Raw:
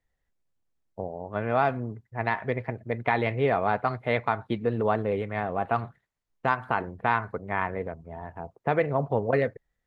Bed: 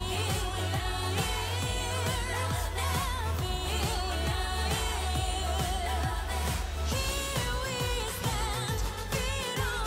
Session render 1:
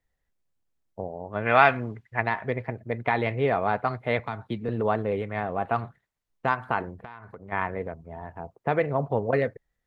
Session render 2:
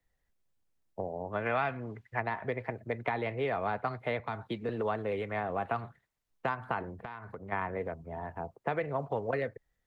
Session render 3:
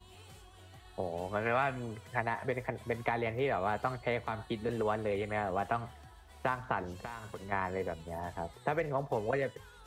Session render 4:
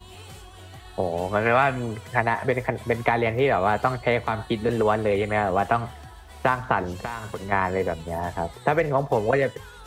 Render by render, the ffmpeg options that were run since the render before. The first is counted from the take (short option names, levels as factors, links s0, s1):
-filter_complex "[0:a]asplit=3[s0][s1][s2];[s0]afade=t=out:st=1.45:d=0.02[s3];[s1]equalizer=f=2400:t=o:w=2.3:g=15,afade=t=in:st=1.45:d=0.02,afade=t=out:st=2.19:d=0.02[s4];[s2]afade=t=in:st=2.19:d=0.02[s5];[s3][s4][s5]amix=inputs=3:normalize=0,asettb=1/sr,asplit=3[s6][s7][s8];[s6]atrim=end=4.194[s9];[s7]atrim=start=4.19:end=4.69,asetpts=PTS-STARTPTS,afade=t=in:d=0.004:c=qsin,afade=t=out:st=0.496:d=0.004:c=qsin,acrossover=split=260|3000[s10][s11][s12];[s11]acompressor=threshold=0.00794:ratio=1.5:attack=3.2:release=140:knee=2.83:detection=peak[s13];[s10][s13][s12]amix=inputs=3:normalize=0[s14];[s8]atrim=start=4.686[s15];[s9][s14]acrossfade=d=0.004:c1=hsin:c2=qsin[s16];[s16][s15]acrossfade=d=0.004:c1=qsin:c2=hsin,asplit=3[s17][s18][s19];[s17]afade=t=out:st=6.95:d=0.02[s20];[s18]acompressor=threshold=0.0126:ratio=8:attack=3.2:release=140:knee=1:detection=peak,afade=t=in:st=6.95:d=0.02,afade=t=out:st=7.51:d=0.02[s21];[s19]afade=t=in:st=7.51:d=0.02[s22];[s20][s21][s22]amix=inputs=3:normalize=0"
-filter_complex "[0:a]acrossover=split=100|290|1300[s0][s1][s2][s3];[s0]acompressor=threshold=0.00282:ratio=4[s4];[s1]acompressor=threshold=0.00562:ratio=4[s5];[s2]acompressor=threshold=0.0251:ratio=4[s6];[s3]acompressor=threshold=0.0112:ratio=4[s7];[s4][s5][s6][s7]amix=inputs=4:normalize=0"
-filter_complex "[1:a]volume=0.0668[s0];[0:a][s0]amix=inputs=2:normalize=0"
-af "volume=3.55"